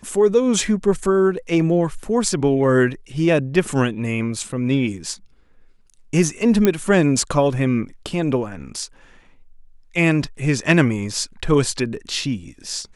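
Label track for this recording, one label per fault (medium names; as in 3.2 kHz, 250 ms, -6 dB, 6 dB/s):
6.650000	6.650000	pop -3 dBFS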